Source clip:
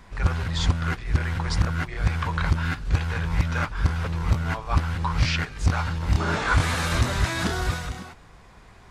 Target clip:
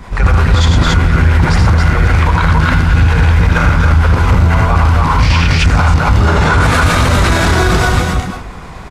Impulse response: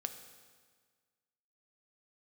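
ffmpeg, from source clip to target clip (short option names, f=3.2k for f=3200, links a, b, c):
-filter_complex "[0:a]equalizer=f=1.7k:w=6.8:g=-3.5,asplit=2[a][b];[b]asoftclip=type=hard:threshold=-20dB,volume=-8dB[c];[a][c]amix=inputs=2:normalize=0,acrossover=split=430[d][e];[d]aeval=exprs='val(0)*(1-0.5/2+0.5/2*cos(2*PI*8.5*n/s))':c=same[f];[e]aeval=exprs='val(0)*(1-0.5/2-0.5/2*cos(2*PI*8.5*n/s))':c=same[g];[f][g]amix=inputs=2:normalize=0,aecho=1:1:75.8|113.7|279.9:0.708|0.562|0.891,asplit=2[h][i];[1:a]atrim=start_sample=2205,lowpass=2.7k[j];[i][j]afir=irnorm=-1:irlink=0,volume=-5dB[k];[h][k]amix=inputs=2:normalize=0,alimiter=level_in=14dB:limit=-1dB:release=50:level=0:latency=1,volume=-1dB"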